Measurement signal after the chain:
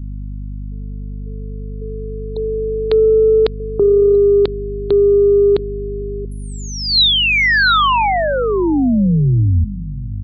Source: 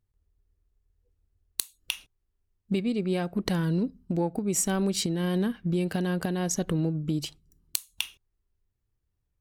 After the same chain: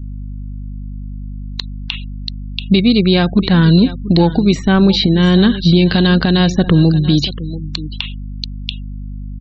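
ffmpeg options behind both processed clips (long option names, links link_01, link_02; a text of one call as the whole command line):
ffmpeg -i in.wav -filter_complex "[0:a]aeval=exprs='val(0)+0.00708*(sin(2*PI*50*n/s)+sin(2*PI*2*50*n/s)/2+sin(2*PI*3*50*n/s)/3+sin(2*PI*4*50*n/s)/4+sin(2*PI*5*50*n/s)/5)':channel_layout=same,equalizer=frequency=550:width=0.91:gain=-5.5,aecho=1:1:685:0.158,acrossover=split=2200[link_01][link_02];[link_02]acompressor=threshold=-46dB:ratio=12[link_03];[link_01][link_03]amix=inputs=2:normalize=0,lowpass=frequency=4000:width_type=q:width=5.6,asplit=2[link_04][link_05];[link_05]asoftclip=type=tanh:threshold=-24dB,volume=-10dB[link_06];[link_04][link_06]amix=inputs=2:normalize=0,afftfilt=real='re*gte(hypot(re,im),0.00501)':imag='im*gte(hypot(re,im),0.00501)':win_size=1024:overlap=0.75,alimiter=level_in=17dB:limit=-1dB:release=50:level=0:latency=1,volume=-1dB" out.wav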